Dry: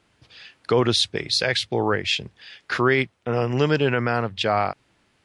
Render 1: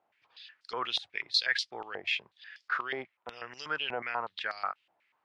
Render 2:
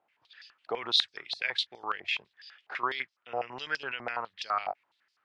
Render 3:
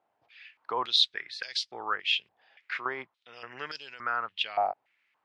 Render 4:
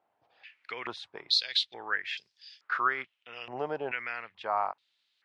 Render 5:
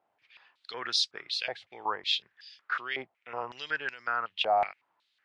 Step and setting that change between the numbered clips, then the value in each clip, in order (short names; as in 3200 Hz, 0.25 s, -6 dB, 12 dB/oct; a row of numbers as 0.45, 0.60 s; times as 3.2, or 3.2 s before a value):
stepped band-pass, rate: 8.2, 12, 3.5, 2.3, 5.4 Hz